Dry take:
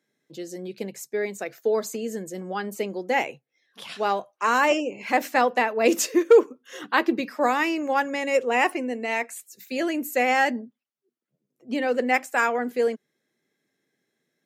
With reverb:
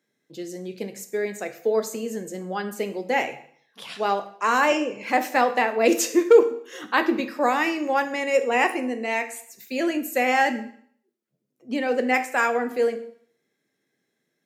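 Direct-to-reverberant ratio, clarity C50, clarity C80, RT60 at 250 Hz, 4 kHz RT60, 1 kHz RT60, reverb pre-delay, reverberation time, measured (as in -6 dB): 8.0 dB, 12.5 dB, 16.0 dB, 0.60 s, 0.55 s, 0.60 s, 6 ms, 0.60 s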